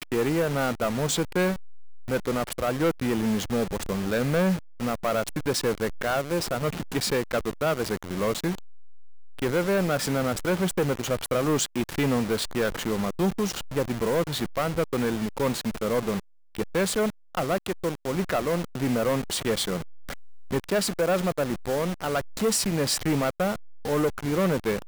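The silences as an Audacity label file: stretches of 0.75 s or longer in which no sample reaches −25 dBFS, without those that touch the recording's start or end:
8.550000	9.420000	silence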